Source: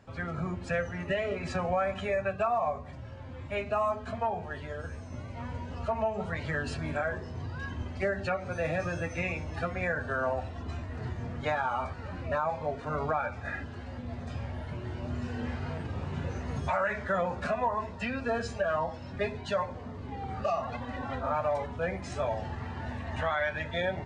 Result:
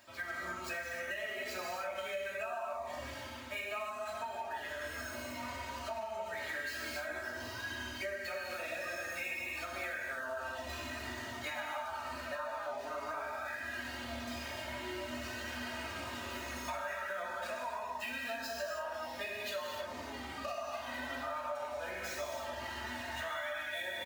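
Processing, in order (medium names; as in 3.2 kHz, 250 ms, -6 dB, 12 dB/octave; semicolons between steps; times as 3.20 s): median filter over 5 samples; tilt EQ +4.5 dB/octave; reverse; upward compressor, threshold -34 dBFS; reverse; comb 3.2 ms, depth 88%; gated-style reverb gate 330 ms flat, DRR -2.5 dB; compression, threshold -30 dBFS, peak gain reduction 11.5 dB; flange 0.51 Hz, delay 8.4 ms, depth 7.3 ms, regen -49%; trim -3 dB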